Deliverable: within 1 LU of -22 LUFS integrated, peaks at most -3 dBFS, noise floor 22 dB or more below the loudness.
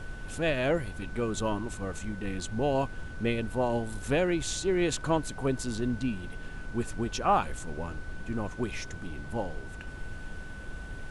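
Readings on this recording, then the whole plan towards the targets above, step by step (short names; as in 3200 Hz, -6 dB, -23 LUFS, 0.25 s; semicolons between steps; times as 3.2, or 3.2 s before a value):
steady tone 1500 Hz; tone level -46 dBFS; noise floor -42 dBFS; noise floor target -54 dBFS; loudness -31.5 LUFS; peak -14.0 dBFS; loudness target -22.0 LUFS
-> notch 1500 Hz, Q 30; noise print and reduce 12 dB; gain +9.5 dB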